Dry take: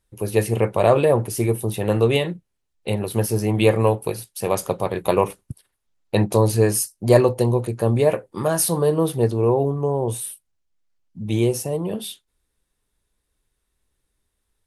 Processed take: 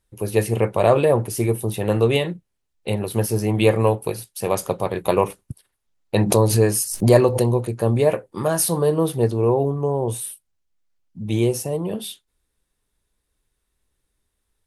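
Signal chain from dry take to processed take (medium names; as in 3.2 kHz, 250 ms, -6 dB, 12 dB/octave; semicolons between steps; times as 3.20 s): 6.18–7.56 s: swell ahead of each attack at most 77 dB/s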